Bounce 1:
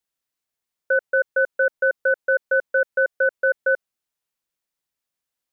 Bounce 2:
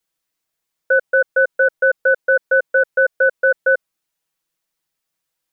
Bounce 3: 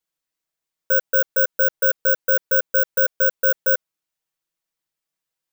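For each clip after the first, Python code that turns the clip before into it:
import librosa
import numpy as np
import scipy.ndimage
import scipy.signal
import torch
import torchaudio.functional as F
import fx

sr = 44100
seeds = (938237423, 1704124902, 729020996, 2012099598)

y1 = x + 0.79 * np.pad(x, (int(6.2 * sr / 1000.0), 0))[:len(x)]
y1 = y1 * librosa.db_to_amplitude(4.0)
y2 = (np.kron(scipy.signal.resample_poly(y1, 1, 2), np.eye(2)[0]) * 2)[:len(y1)]
y2 = y2 * librosa.db_to_amplitude(-6.5)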